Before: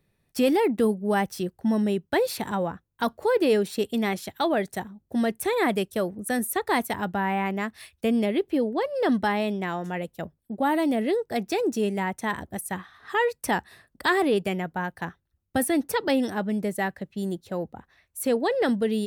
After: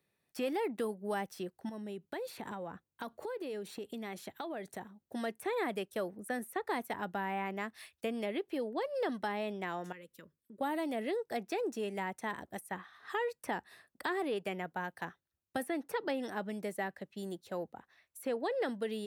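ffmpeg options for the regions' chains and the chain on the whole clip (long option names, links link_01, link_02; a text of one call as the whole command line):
ffmpeg -i in.wav -filter_complex "[0:a]asettb=1/sr,asplit=3[link_01][link_02][link_03];[link_01]atrim=end=1.694[link_04];[link_02]atrim=start=1.69:end=4.84,asetpts=PTS-STARTPTS,afade=type=in:duration=0.004:curve=qsin,afade=type=out:start_time=3.146:duration=0.004:curve=qsin,acompressor=threshold=-32dB:ratio=10:attack=3.2:release=140:knee=1:detection=peak,lowshelf=frequency=470:gain=5.5,bandreject=frequency=5200:width=16[link_05];[link_03]atrim=start=4.836[link_06];[link_04][link_05]acrossfade=duration=0.004:curve1=hsin:curve2=qsin[link_07];[link_07][link_06]acrossfade=duration=0.004:curve1=qsin:curve2=hsin,asettb=1/sr,asplit=3[link_08][link_09][link_10];[link_08]atrim=end=9.924[link_11];[link_09]atrim=start=9.92:end=10.61,asetpts=PTS-STARTPTS,afade=type=in:duration=0.004:curve=qsin,afade=type=out:start_time=0.686:duration=0.004:curve=qsin,acompressor=threshold=-40dB:ratio=4:attack=3.2:release=140:knee=1:detection=peak,asuperstop=centerf=740:order=4:qfactor=1.5[link_12];[link_10]atrim=start=10.606[link_13];[link_11][link_12]acrossfade=duration=0.004:curve1=hsin:curve2=qsin[link_14];[link_14][link_13]acrossfade=duration=0.004:curve1=qsin:curve2=hsin,acrossover=split=560|2700[link_15][link_16][link_17];[link_15]acompressor=threshold=-27dB:ratio=4[link_18];[link_16]acompressor=threshold=-31dB:ratio=4[link_19];[link_17]acompressor=threshold=-47dB:ratio=4[link_20];[link_18][link_19][link_20]amix=inputs=3:normalize=0,highpass=frequency=400:poles=1,volume=-5dB" out.wav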